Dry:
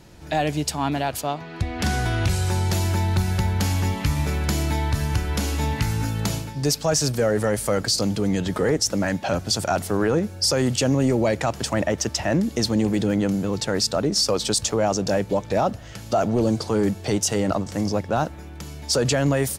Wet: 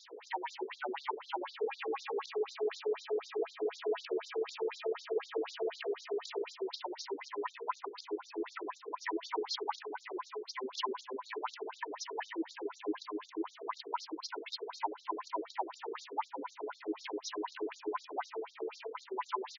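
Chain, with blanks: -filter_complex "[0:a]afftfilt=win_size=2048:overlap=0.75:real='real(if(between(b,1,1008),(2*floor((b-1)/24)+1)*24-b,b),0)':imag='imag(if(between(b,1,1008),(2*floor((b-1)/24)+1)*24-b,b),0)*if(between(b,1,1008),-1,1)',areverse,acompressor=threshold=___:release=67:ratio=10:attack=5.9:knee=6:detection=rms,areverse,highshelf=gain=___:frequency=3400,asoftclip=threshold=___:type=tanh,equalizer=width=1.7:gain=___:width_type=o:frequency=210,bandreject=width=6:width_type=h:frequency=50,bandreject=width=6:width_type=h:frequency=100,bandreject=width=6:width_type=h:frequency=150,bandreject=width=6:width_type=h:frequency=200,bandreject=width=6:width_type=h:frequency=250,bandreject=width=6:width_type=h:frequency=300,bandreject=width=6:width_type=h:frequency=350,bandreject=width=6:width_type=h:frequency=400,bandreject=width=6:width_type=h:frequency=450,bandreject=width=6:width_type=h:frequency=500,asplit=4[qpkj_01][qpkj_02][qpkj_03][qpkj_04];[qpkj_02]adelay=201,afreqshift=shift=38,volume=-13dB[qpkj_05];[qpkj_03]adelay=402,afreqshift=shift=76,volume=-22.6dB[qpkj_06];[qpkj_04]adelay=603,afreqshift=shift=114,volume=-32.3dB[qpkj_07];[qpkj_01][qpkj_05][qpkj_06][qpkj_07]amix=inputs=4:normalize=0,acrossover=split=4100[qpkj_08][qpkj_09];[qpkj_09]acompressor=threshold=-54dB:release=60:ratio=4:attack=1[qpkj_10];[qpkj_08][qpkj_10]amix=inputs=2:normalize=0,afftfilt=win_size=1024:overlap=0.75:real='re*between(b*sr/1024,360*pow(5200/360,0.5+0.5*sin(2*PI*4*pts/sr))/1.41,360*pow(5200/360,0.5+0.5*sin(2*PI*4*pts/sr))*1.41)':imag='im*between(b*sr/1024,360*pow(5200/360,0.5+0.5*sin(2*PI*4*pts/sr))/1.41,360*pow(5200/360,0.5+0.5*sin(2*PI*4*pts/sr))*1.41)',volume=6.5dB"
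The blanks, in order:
-29dB, -4.5, -26dB, -10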